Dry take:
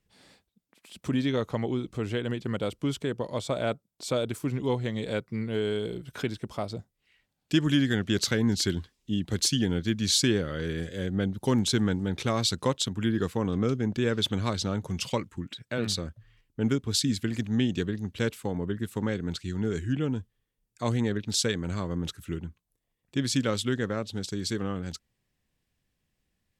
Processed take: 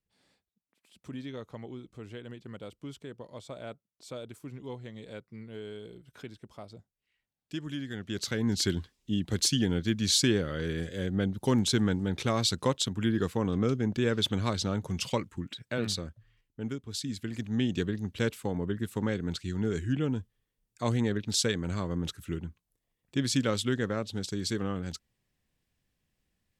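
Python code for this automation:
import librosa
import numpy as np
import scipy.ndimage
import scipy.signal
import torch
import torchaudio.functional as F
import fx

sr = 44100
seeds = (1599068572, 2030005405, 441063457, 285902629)

y = fx.gain(x, sr, db=fx.line((7.86, -13.0), (8.63, -1.0), (15.73, -1.0), (16.86, -11.0), (17.79, -1.0)))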